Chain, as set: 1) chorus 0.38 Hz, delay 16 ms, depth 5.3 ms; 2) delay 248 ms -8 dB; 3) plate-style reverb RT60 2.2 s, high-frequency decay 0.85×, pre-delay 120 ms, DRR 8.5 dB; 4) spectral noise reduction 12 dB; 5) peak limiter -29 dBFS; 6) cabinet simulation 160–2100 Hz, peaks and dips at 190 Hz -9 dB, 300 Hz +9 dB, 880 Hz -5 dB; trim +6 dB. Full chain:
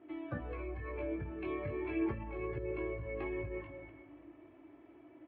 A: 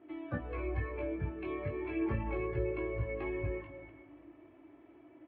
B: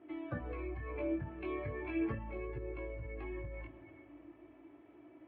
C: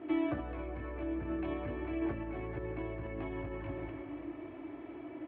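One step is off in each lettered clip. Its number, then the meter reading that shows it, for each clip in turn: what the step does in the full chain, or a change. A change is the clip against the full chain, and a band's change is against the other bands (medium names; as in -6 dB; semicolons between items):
5, mean gain reduction 2.0 dB; 2, loudness change -1.5 LU; 4, 250 Hz band +3.5 dB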